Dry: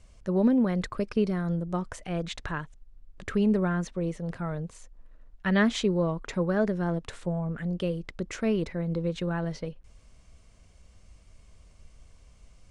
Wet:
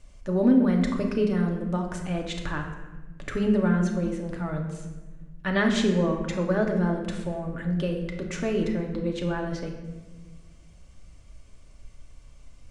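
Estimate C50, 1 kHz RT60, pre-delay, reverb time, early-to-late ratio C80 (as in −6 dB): 5.5 dB, 1.1 s, 3 ms, 1.2 s, 7.5 dB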